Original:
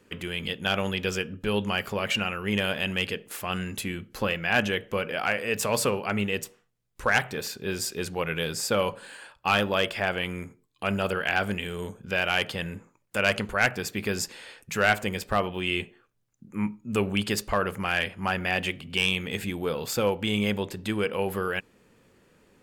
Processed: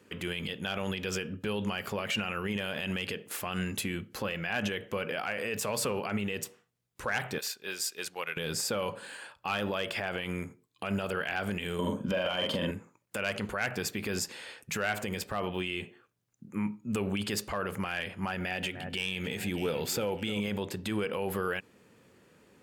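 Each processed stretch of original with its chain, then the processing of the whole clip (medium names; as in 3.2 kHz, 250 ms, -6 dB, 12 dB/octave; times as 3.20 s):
7.38–8.37 s: high-pass 1.3 kHz 6 dB/octave + transient shaper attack -1 dB, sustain -6 dB
11.79–12.71 s: doubling 44 ms -5.5 dB + small resonant body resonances 260/560/980/3100 Hz, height 14 dB, ringing for 25 ms
18.33–20.40 s: band-stop 1.1 kHz, Q 6 + echo whose repeats swap between lows and highs 303 ms, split 1.7 kHz, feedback 54%, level -13 dB
whole clip: high-pass 76 Hz; peak limiter -21.5 dBFS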